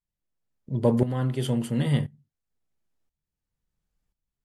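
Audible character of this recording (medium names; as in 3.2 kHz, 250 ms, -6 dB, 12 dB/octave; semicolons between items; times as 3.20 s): tremolo saw up 0.97 Hz, depth 80%; AAC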